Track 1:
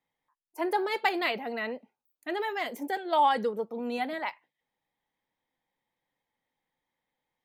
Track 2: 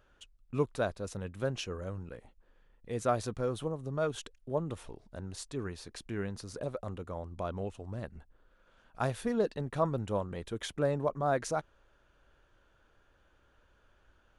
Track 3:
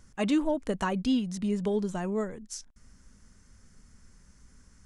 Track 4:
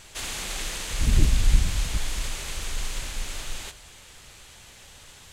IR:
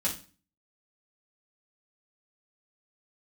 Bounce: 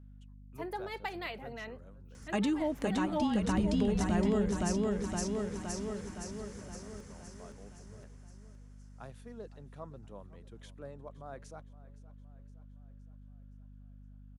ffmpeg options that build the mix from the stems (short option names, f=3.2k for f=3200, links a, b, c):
-filter_complex "[0:a]volume=-10.5dB[a];[1:a]volume=-17dB,asplit=3[b][c][d];[c]volume=-18.5dB[e];[2:a]acontrast=85,alimiter=limit=-18dB:level=0:latency=1:release=192,adelay=2150,volume=-0.5dB,asplit=2[f][g];[g]volume=-3dB[h];[3:a]lowpass=1.4k,adelay=2400,volume=-13.5dB,asplit=2[i][j];[j]volume=-4.5dB[k];[d]apad=whole_len=308847[l];[f][l]sidechaincompress=threshold=-51dB:ratio=8:attack=5.6:release=109[m];[e][h][k]amix=inputs=3:normalize=0,aecho=0:1:516|1032|1548|2064|2580|3096|3612|4128:1|0.55|0.303|0.166|0.0915|0.0503|0.0277|0.0152[n];[a][b][m][i][n]amix=inputs=5:normalize=0,highpass=61,acrossover=split=180[o][p];[p]acompressor=threshold=-34dB:ratio=2[q];[o][q]amix=inputs=2:normalize=0,aeval=exprs='val(0)+0.00282*(sin(2*PI*50*n/s)+sin(2*PI*2*50*n/s)/2+sin(2*PI*3*50*n/s)/3+sin(2*PI*4*50*n/s)/4+sin(2*PI*5*50*n/s)/5)':c=same"